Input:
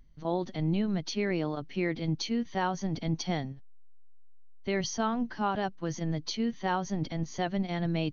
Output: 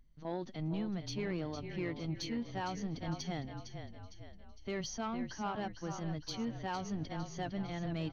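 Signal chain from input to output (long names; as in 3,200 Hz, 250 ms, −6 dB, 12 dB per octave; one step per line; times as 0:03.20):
echo with shifted repeats 457 ms, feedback 48%, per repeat −32 Hz, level −9 dB
soft clipping −21 dBFS, distortion −18 dB
level −7 dB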